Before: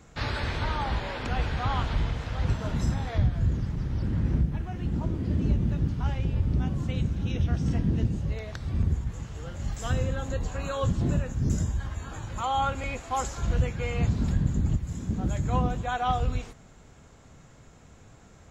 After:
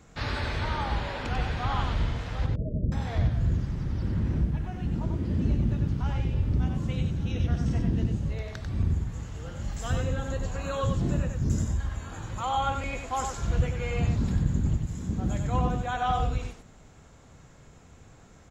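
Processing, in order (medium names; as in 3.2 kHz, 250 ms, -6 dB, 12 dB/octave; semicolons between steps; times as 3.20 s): 2.46–2.92 s: Chebyshev low-pass 640 Hz, order 10; delay 94 ms -5 dB; trim -1.5 dB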